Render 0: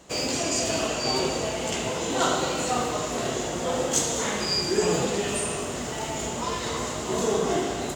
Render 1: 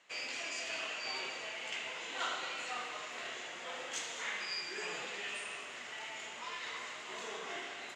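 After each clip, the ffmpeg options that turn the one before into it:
-af "bandpass=f=2.2k:t=q:w=1.9:csg=0,volume=-3.5dB"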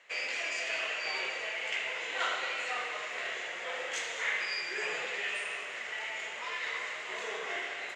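-af "equalizer=f=250:t=o:w=1:g=-6,equalizer=f=500:t=o:w=1:g=8,equalizer=f=2k:t=o:w=1:g=9"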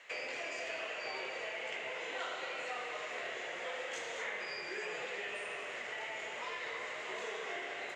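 -filter_complex "[0:a]acrossover=split=830|1800[a][b][c];[a]acompressor=threshold=-46dB:ratio=4[d];[b]acompressor=threshold=-54dB:ratio=4[e];[c]acompressor=threshold=-50dB:ratio=4[f];[d][e][f]amix=inputs=3:normalize=0,volume=3.5dB"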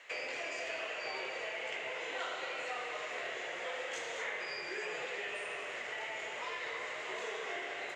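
-af "equalizer=f=210:t=o:w=0.31:g=-6,volume=1dB"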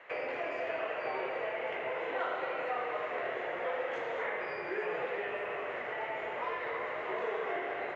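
-af "lowpass=1.4k,volume=7.5dB"

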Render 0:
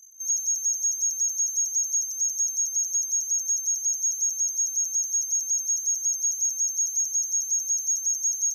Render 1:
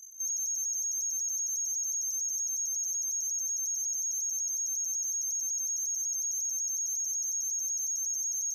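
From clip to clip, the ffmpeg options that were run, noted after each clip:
-af "alimiter=level_in=6.5dB:limit=-24dB:level=0:latency=1:release=29,volume=-6.5dB,volume=2dB"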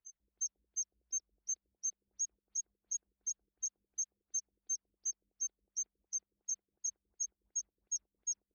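-af "afftfilt=real='re*lt(b*sr/1024,510*pow(7200/510,0.5+0.5*sin(2*PI*2.8*pts/sr)))':imag='im*lt(b*sr/1024,510*pow(7200/510,0.5+0.5*sin(2*PI*2.8*pts/sr)))':win_size=1024:overlap=0.75,volume=-1.5dB"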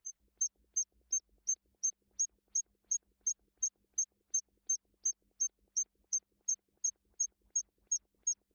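-af "acompressor=threshold=-40dB:ratio=5,volume=8.5dB"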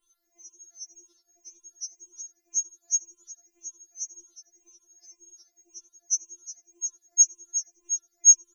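-filter_complex "[0:a]afftfilt=real='re*pow(10,18/40*sin(2*PI*(0.66*log(max(b,1)*sr/1024/100)/log(2)-(1.9)*(pts-256)/sr)))':imag='im*pow(10,18/40*sin(2*PI*(0.66*log(max(b,1)*sr/1024/100)/log(2)-(1.9)*(pts-256)/sr)))':win_size=1024:overlap=0.75,asplit=4[a][b][c][d];[b]adelay=88,afreqshift=88,volume=-21dB[e];[c]adelay=176,afreqshift=176,volume=-27.7dB[f];[d]adelay=264,afreqshift=264,volume=-34.5dB[g];[a][e][f][g]amix=inputs=4:normalize=0,afftfilt=real='re*4*eq(mod(b,16),0)':imag='im*4*eq(mod(b,16),0)':win_size=2048:overlap=0.75,volume=5.5dB"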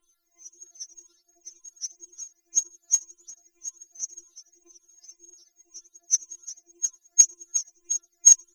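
-af "aphaser=in_gain=1:out_gain=1:delay=1.1:decay=0.6:speed=1.5:type=triangular"

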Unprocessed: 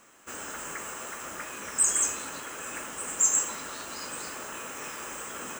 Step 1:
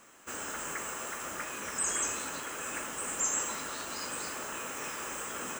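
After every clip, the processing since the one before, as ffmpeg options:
-filter_complex "[0:a]acrossover=split=5100[a][b];[b]acompressor=threshold=-33dB:ratio=4:attack=1:release=60[c];[a][c]amix=inputs=2:normalize=0"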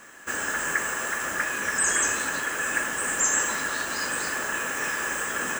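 -af "equalizer=f=1.7k:t=o:w=0.21:g=13.5,volume=7dB"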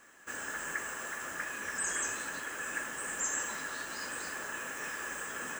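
-af "flanger=delay=2.3:depth=6.3:regen=-66:speed=1.2:shape=triangular,volume=-6.5dB"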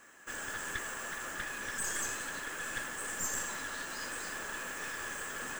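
-af "aeval=exprs='clip(val(0),-1,0.00841)':c=same,volume=1dB"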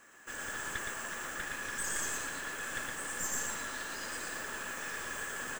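-af "aecho=1:1:116:0.708,volume=-1.5dB"

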